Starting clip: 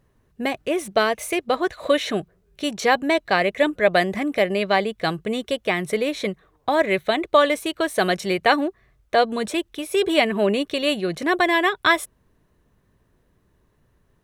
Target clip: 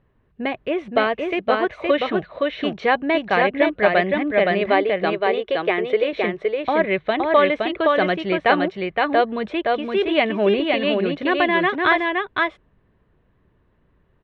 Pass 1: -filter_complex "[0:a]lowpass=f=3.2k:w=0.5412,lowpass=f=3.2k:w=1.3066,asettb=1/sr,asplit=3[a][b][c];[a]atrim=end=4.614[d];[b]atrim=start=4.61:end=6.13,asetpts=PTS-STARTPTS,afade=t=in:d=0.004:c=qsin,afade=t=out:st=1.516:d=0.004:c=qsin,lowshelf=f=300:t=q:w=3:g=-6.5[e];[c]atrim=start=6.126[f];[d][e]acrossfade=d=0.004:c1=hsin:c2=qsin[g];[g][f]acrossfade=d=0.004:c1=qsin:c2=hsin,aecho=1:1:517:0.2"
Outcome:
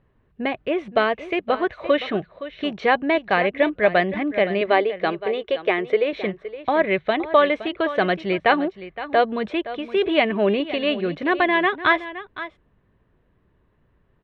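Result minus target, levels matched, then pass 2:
echo-to-direct -11 dB
-filter_complex "[0:a]lowpass=f=3.2k:w=0.5412,lowpass=f=3.2k:w=1.3066,asettb=1/sr,asplit=3[a][b][c];[a]atrim=end=4.614[d];[b]atrim=start=4.61:end=6.13,asetpts=PTS-STARTPTS,afade=t=in:d=0.004:c=qsin,afade=t=out:st=1.516:d=0.004:c=qsin,lowshelf=f=300:t=q:w=3:g=-6.5[e];[c]atrim=start=6.126[f];[d][e]acrossfade=d=0.004:c1=hsin:c2=qsin[g];[g][f]acrossfade=d=0.004:c1=qsin:c2=hsin,aecho=1:1:517:0.708"

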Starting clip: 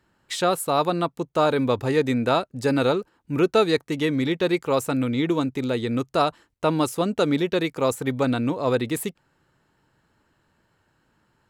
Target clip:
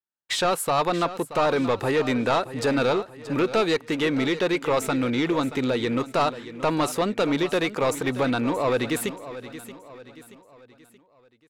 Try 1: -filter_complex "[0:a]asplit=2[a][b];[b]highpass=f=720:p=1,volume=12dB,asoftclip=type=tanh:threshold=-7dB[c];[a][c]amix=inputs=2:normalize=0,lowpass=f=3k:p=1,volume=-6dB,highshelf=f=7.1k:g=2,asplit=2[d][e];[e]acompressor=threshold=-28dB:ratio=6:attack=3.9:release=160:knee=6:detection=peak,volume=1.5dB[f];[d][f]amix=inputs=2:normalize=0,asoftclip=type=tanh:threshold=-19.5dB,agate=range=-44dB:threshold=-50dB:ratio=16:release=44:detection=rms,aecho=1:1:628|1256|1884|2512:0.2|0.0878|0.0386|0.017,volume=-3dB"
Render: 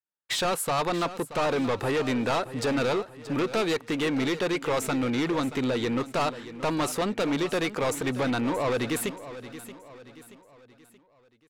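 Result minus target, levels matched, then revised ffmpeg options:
soft clip: distortion +7 dB
-filter_complex "[0:a]asplit=2[a][b];[b]highpass=f=720:p=1,volume=12dB,asoftclip=type=tanh:threshold=-7dB[c];[a][c]amix=inputs=2:normalize=0,lowpass=f=3k:p=1,volume=-6dB,highshelf=f=7.1k:g=2,asplit=2[d][e];[e]acompressor=threshold=-28dB:ratio=6:attack=3.9:release=160:knee=6:detection=peak,volume=1.5dB[f];[d][f]amix=inputs=2:normalize=0,asoftclip=type=tanh:threshold=-12.5dB,agate=range=-44dB:threshold=-50dB:ratio=16:release=44:detection=rms,aecho=1:1:628|1256|1884|2512:0.2|0.0878|0.0386|0.017,volume=-3dB"

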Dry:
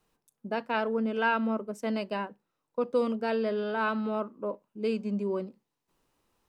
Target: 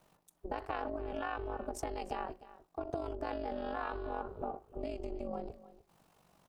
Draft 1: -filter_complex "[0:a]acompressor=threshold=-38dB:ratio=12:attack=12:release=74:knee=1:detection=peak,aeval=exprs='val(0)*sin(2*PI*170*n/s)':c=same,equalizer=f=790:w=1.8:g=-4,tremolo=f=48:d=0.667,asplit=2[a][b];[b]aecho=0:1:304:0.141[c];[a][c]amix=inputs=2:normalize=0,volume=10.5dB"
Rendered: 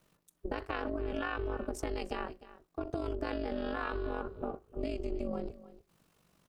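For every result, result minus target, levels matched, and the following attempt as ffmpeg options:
compressor: peak gain reduction -6 dB; 1000 Hz band -4.0 dB
-filter_complex "[0:a]acompressor=threshold=-44.5dB:ratio=12:attack=12:release=74:knee=1:detection=peak,aeval=exprs='val(0)*sin(2*PI*170*n/s)':c=same,equalizer=f=790:w=1.8:g=-4,tremolo=f=48:d=0.667,asplit=2[a][b];[b]aecho=0:1:304:0.141[c];[a][c]amix=inputs=2:normalize=0,volume=10.5dB"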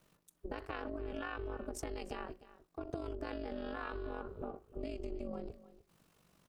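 1000 Hz band -4.5 dB
-filter_complex "[0:a]acompressor=threshold=-44.5dB:ratio=12:attack=12:release=74:knee=1:detection=peak,aeval=exprs='val(0)*sin(2*PI*170*n/s)':c=same,equalizer=f=790:w=1.8:g=6,tremolo=f=48:d=0.667,asplit=2[a][b];[b]aecho=0:1:304:0.141[c];[a][c]amix=inputs=2:normalize=0,volume=10.5dB"

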